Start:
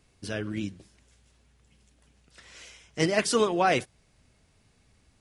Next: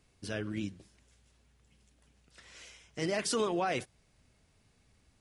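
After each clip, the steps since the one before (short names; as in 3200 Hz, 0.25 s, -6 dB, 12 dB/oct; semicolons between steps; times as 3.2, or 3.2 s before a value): limiter -18 dBFS, peak gain reduction 8 dB; gain -4 dB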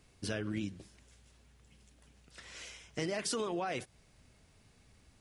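compressor 10:1, threshold -36 dBFS, peak gain reduction 10 dB; gain +4 dB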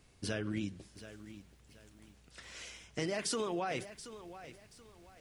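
lo-fi delay 0.729 s, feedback 35%, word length 10-bit, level -13.5 dB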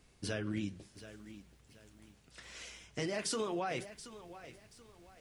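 flange 0.76 Hz, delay 3.8 ms, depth 7 ms, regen -66%; gain +3.5 dB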